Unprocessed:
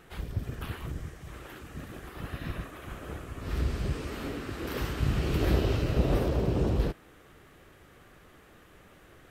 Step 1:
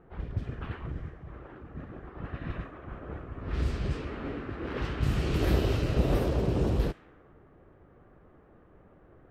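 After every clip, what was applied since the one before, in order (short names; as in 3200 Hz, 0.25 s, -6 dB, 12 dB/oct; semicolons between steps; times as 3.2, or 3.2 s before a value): low-pass opened by the level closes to 860 Hz, open at -22 dBFS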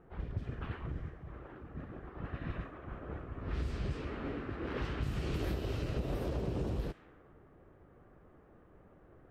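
compressor 12:1, threshold -28 dBFS, peak gain reduction 10 dB; gain -3 dB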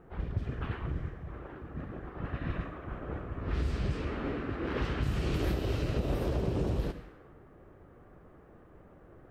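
reverb RT60 0.70 s, pre-delay 68 ms, DRR 13 dB; gain +4.5 dB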